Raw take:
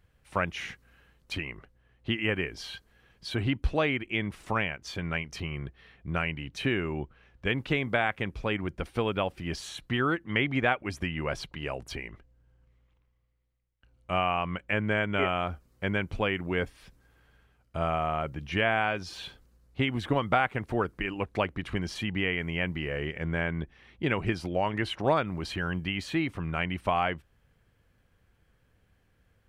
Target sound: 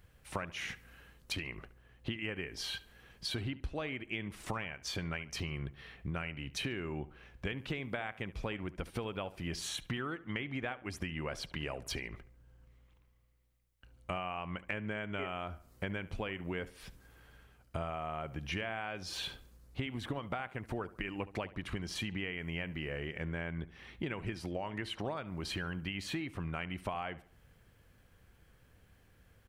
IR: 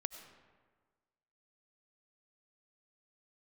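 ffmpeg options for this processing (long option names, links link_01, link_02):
-filter_complex "[0:a]highshelf=frequency=6800:gain=6,acompressor=threshold=-38dB:ratio=10,asplit=2[link_01][link_02];[link_02]adelay=71,lowpass=frequency=3300:poles=1,volume=-17dB,asplit=2[link_03][link_04];[link_04]adelay=71,lowpass=frequency=3300:poles=1,volume=0.44,asplit=2[link_05][link_06];[link_06]adelay=71,lowpass=frequency=3300:poles=1,volume=0.44,asplit=2[link_07][link_08];[link_08]adelay=71,lowpass=frequency=3300:poles=1,volume=0.44[link_09];[link_01][link_03][link_05][link_07][link_09]amix=inputs=5:normalize=0,volume=3dB"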